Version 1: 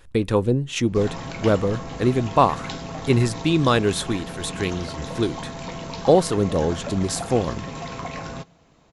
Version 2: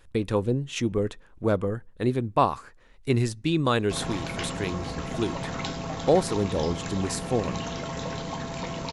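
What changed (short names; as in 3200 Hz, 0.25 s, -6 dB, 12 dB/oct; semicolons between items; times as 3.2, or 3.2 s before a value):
speech -5.0 dB; background: entry +2.95 s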